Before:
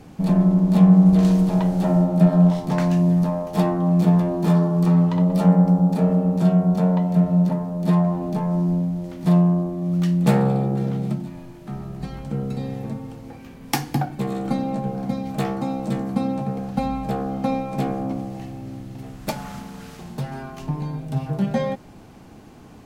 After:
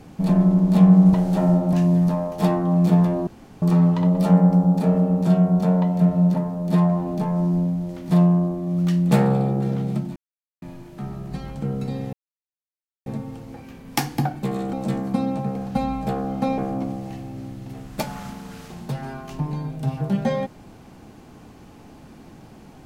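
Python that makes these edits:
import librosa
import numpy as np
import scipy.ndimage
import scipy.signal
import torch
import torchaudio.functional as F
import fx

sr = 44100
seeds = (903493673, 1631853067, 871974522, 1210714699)

y = fx.edit(x, sr, fx.cut(start_s=1.14, length_s=0.47),
    fx.cut(start_s=2.2, length_s=0.68),
    fx.room_tone_fill(start_s=4.42, length_s=0.35),
    fx.insert_silence(at_s=11.31, length_s=0.46),
    fx.insert_silence(at_s=12.82, length_s=0.93),
    fx.cut(start_s=14.49, length_s=1.26),
    fx.cut(start_s=17.6, length_s=0.27), tone=tone)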